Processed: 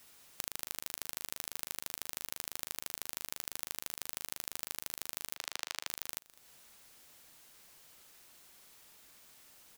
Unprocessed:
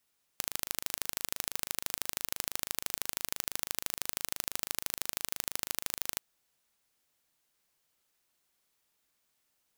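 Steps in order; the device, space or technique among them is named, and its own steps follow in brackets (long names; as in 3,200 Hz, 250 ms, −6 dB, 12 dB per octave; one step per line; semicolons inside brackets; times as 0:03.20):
0:05.36–0:05.87: three-way crossover with the lows and the highs turned down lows −13 dB, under 470 Hz, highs −16 dB, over 6,400 Hz
serial compression, leveller first (downward compressor 2 to 1, threshold −38 dBFS, peak gain reduction 6.5 dB; downward compressor 5 to 1, threshold −52 dBFS, peak gain reduction 16.5 dB)
single-tap delay 205 ms −21 dB
level +17.5 dB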